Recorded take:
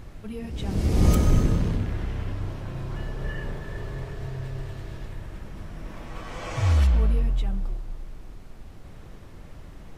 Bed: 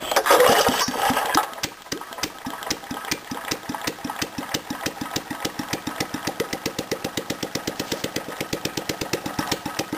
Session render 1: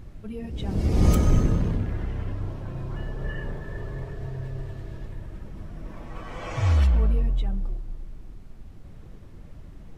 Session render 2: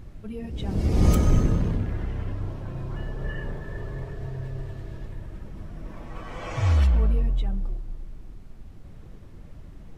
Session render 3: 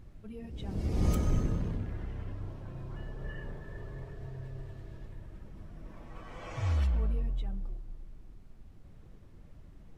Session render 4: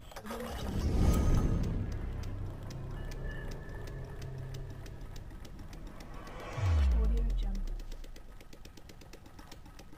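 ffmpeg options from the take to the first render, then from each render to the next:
-af "afftdn=nr=7:nf=-44"
-af anull
-af "volume=-9dB"
-filter_complex "[1:a]volume=-28dB[a];[0:a][a]amix=inputs=2:normalize=0"

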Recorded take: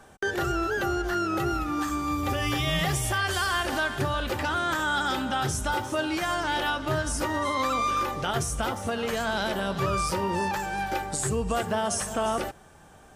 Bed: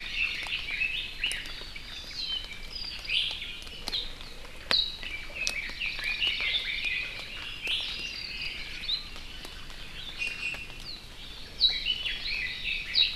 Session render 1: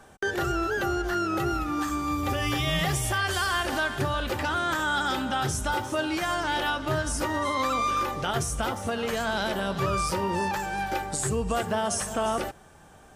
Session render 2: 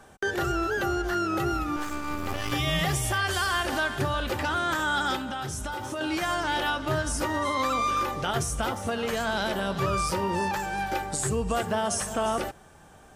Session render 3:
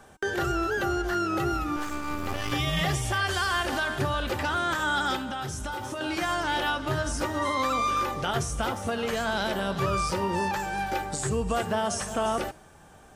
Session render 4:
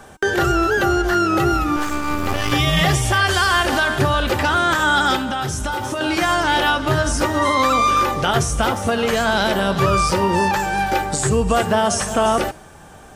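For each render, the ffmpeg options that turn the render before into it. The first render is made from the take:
-af anull
-filter_complex "[0:a]asettb=1/sr,asplit=3[a][b][c];[a]atrim=end=1.764[d];[b]atrim=start=1.76:end=2.52,asetpts=PTS-STARTPTS,afade=t=in:d=0.004:c=qsin,afade=t=out:st=0.756:d=0.004:c=qsin,aeval=exprs='max(val(0),0)':c=same[e];[c]atrim=start=2.516[f];[d][e]acrossfade=d=0.004:c1=hsin:c2=qsin[g];[g][f]acrossfade=d=0.004:c1=qsin:c2=hsin,asettb=1/sr,asplit=3[h][i][j];[h]atrim=end=5.164[k];[i]atrim=start=5.16:end=6.01,asetpts=PTS-STARTPTS,afade=t=in:d=0.004:c=qsin,afade=t=out:st=0.846:d=0.004:c=qsin,acompressor=threshold=-29dB:ratio=6:attack=3.2:release=140:knee=1:detection=peak[l];[j]atrim=start=6.006[m];[k][l]acrossfade=d=0.004:c1=hsin:c2=qsin[n];[n][m]acrossfade=d=0.004:c1=qsin:c2=hsin"
-filter_complex "[0:a]bandreject=f=313.1:t=h:w=4,bandreject=f=626.2:t=h:w=4,bandreject=f=939.3:t=h:w=4,bandreject=f=1.2524k:t=h:w=4,bandreject=f=1.5655k:t=h:w=4,bandreject=f=1.8786k:t=h:w=4,bandreject=f=2.1917k:t=h:w=4,bandreject=f=2.5048k:t=h:w=4,bandreject=f=2.8179k:t=h:w=4,bandreject=f=3.131k:t=h:w=4,bandreject=f=3.4441k:t=h:w=4,bandreject=f=3.7572k:t=h:w=4,bandreject=f=4.0703k:t=h:w=4,bandreject=f=4.3834k:t=h:w=4,bandreject=f=4.6965k:t=h:w=4,bandreject=f=5.0096k:t=h:w=4,bandreject=f=5.3227k:t=h:w=4,bandreject=f=5.6358k:t=h:w=4,bandreject=f=5.9489k:t=h:w=4,bandreject=f=6.262k:t=h:w=4,bandreject=f=6.5751k:t=h:w=4,bandreject=f=6.8882k:t=h:w=4,bandreject=f=7.2013k:t=h:w=4,bandreject=f=7.5144k:t=h:w=4,bandreject=f=7.8275k:t=h:w=4,bandreject=f=8.1406k:t=h:w=4,bandreject=f=8.4537k:t=h:w=4,bandreject=f=8.7668k:t=h:w=4,bandreject=f=9.0799k:t=h:w=4,bandreject=f=9.393k:t=h:w=4,bandreject=f=9.7061k:t=h:w=4,bandreject=f=10.0192k:t=h:w=4,acrossover=split=8300[a][b];[b]acompressor=threshold=-47dB:ratio=4:attack=1:release=60[c];[a][c]amix=inputs=2:normalize=0"
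-af "volume=10dB"

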